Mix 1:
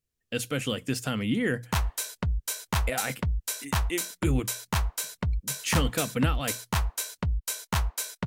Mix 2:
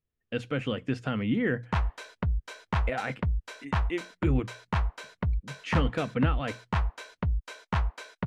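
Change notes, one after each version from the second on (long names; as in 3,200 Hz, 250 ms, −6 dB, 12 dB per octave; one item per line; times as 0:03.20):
master: add low-pass filter 2,300 Hz 12 dB per octave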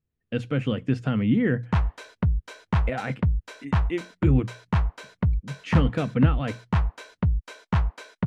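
master: add parametric band 140 Hz +8 dB 2.5 octaves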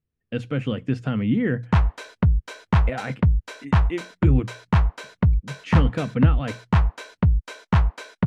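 background +4.5 dB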